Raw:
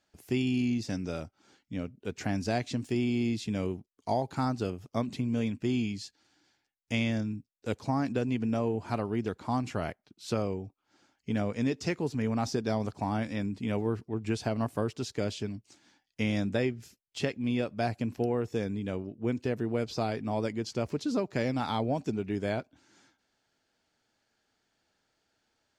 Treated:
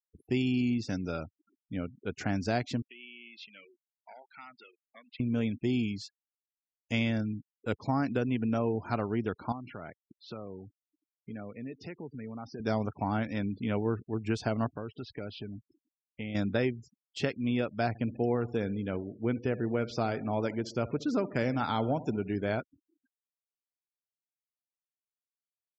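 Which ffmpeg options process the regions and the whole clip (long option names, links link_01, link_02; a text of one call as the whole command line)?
ffmpeg -i in.wav -filter_complex "[0:a]asettb=1/sr,asplit=3[link_01][link_02][link_03];[link_01]atrim=end=2.824[link_04];[link_02]atrim=start=2.82:end=5.2,asetpts=PTS-STARTPTS,afade=type=in:duration=0.004:curve=qsin,afade=type=out:start_time=2.376:duration=0.004:curve=qsin,acompressor=threshold=-31dB:ratio=2.5:attack=3.2:release=140:knee=1:detection=peak,asoftclip=type=hard:threshold=-28dB,bandpass=frequency=2700:width_type=q:width=1.6[link_05];[link_03]atrim=start=5.196[link_06];[link_04][link_05]acrossfade=duration=0.004:curve1=hsin:curve2=qsin[link_07];[link_07][link_06]acrossfade=duration=0.004:curve1=qsin:curve2=hsin,asettb=1/sr,asplit=3[link_08][link_09][link_10];[link_08]atrim=end=9.524[link_11];[link_09]atrim=start=9.52:end=12.6,asetpts=PTS-STARTPTS,afade=type=in:duration=0.004:curve=qsin,afade=type=out:start_time=3.076:duration=0.004:curve=qsin,highpass=100,lowpass=3900,acompressor=threshold=-46dB:ratio=2:attack=3.2:release=140:knee=1:detection=peak[link_12];[link_10]atrim=start=12.596[link_13];[link_11][link_12]acrossfade=duration=0.004:curve1=hsin:curve2=qsin[link_14];[link_14][link_13]acrossfade=duration=0.004:curve1=qsin:curve2=hsin,asettb=1/sr,asplit=3[link_15][link_16][link_17];[link_15]atrim=end=14.684[link_18];[link_16]atrim=start=14.68:end=16.35,asetpts=PTS-STARTPTS,afade=type=in:duration=0.004:curve=qsin,afade=type=out:start_time=1.666:duration=0.004:curve=qsin,lowpass=frequency=4600:width=0.5412,lowpass=frequency=4600:width=1.3066,acompressor=threshold=-40dB:ratio=2:attack=3.2:release=140:knee=1:detection=peak,aeval=exprs='val(0)+0.000251*(sin(2*PI*60*n/s)+sin(2*PI*2*60*n/s)/2+sin(2*PI*3*60*n/s)/3+sin(2*PI*4*60*n/s)/4+sin(2*PI*5*60*n/s)/5)':channel_layout=same[link_19];[link_17]atrim=start=16.346[link_20];[link_18][link_19]acrossfade=duration=0.004:curve1=hsin:curve2=qsin[link_21];[link_21][link_20]acrossfade=duration=0.004:curve1=qsin:curve2=hsin,asettb=1/sr,asplit=3[link_22][link_23][link_24];[link_22]atrim=end=17.884[link_25];[link_23]atrim=start=17.88:end=22.56,asetpts=PTS-STARTPTS,afade=type=in:duration=0.004:curve=qsin,afade=type=out:start_time=4.676:duration=0.004:curve=qsin,equalizer=frequency=4300:width_type=o:width=0.43:gain=-3.5,aecho=1:1:67|134|201|268|335|402:0.141|0.0848|0.0509|0.0305|0.0183|0.011,atrim=end_sample=206388[link_26];[link_24]atrim=start=22.556[link_27];[link_25][link_26]acrossfade=duration=0.004:curve1=hsin:curve2=qsin[link_28];[link_28][link_27]acrossfade=duration=0.004:curve1=qsin:curve2=hsin,afftfilt=real='re*gte(hypot(re,im),0.00447)':imag='im*gte(hypot(re,im),0.00447)':win_size=1024:overlap=0.75,lowpass=6600,equalizer=frequency=1400:width_type=o:width=0.26:gain=6" out.wav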